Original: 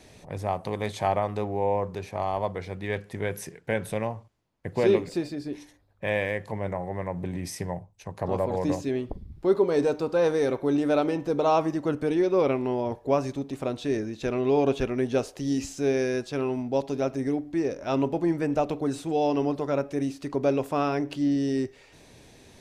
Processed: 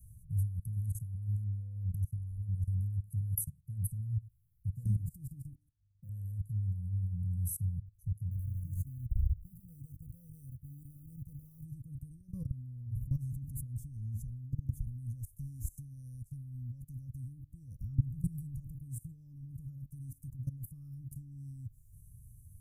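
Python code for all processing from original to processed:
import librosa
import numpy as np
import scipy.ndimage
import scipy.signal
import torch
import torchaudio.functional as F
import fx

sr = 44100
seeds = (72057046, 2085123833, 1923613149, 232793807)

y = fx.chain(x, sr, fx.bandpass_q(hz=460.0, q=0.8),
    fx.leveller(passes=1), at=(5.53, 6.09))
y = fx.chain(y, sr, fx.law_mismatch(coded='mu'),
    fx.peak_eq(hz=76.0, db=3.0, octaves=1.5),
    fx.level_steps(step_db=13), at=(8.31, 11.65))
y = fx.chain(y, sr, fx.high_shelf(hz=6000.0, db=-4.5),
    fx.echo_single(ms=90, db=-23.0),
    fx.env_flatten(amount_pct=70), at=(12.28, 14.31))
y = fx.chain(y, sr, fx.comb(ms=0.9, depth=0.98),
    fx.band_squash(depth_pct=100), at=(17.8, 18.6))
y = fx.level_steps(y, sr, step_db=20)
y = scipy.signal.sosfilt(scipy.signal.cheby2(4, 60, [370.0, 4300.0], 'bandstop', fs=sr, output='sos'), y)
y = fx.peak_eq(y, sr, hz=500.0, db=11.5, octaves=0.21)
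y = y * 10.0 ** (13.5 / 20.0)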